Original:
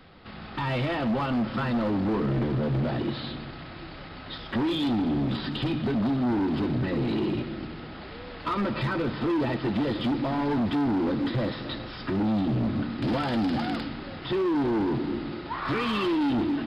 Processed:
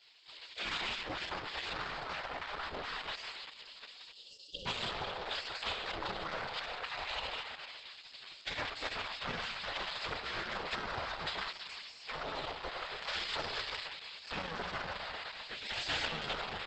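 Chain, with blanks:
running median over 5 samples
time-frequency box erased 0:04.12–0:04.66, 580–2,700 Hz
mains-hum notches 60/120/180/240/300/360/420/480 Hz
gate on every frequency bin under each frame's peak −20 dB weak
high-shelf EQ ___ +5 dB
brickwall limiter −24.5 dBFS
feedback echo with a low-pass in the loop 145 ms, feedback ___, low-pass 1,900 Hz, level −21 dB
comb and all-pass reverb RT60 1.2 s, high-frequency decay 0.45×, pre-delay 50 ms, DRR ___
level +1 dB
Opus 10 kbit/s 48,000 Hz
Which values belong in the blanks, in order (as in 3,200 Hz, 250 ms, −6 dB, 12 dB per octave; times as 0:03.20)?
2,300 Hz, 61%, 16 dB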